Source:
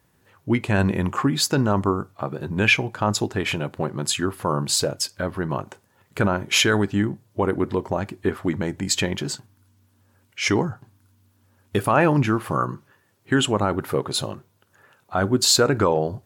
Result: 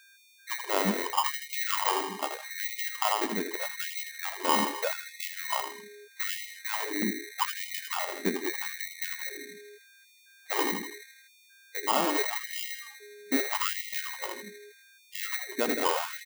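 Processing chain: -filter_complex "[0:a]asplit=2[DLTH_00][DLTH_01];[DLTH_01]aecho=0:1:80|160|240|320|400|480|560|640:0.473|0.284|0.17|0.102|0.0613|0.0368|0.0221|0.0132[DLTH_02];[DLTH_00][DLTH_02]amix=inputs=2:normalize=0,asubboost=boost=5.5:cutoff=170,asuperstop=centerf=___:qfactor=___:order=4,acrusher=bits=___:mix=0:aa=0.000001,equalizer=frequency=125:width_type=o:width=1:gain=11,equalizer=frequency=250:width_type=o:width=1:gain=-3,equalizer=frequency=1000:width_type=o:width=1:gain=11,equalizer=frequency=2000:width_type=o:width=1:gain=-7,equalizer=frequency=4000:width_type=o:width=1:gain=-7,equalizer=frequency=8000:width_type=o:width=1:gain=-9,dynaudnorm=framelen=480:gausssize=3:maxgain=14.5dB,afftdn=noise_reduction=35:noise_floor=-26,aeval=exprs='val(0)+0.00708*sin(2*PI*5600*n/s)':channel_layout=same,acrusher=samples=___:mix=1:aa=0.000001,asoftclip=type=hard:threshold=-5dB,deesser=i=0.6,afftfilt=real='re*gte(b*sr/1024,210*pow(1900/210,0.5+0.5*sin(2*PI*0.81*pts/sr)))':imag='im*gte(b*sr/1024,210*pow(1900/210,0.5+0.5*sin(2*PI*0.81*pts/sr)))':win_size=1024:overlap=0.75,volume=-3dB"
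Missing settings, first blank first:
3500, 0.74, 11, 22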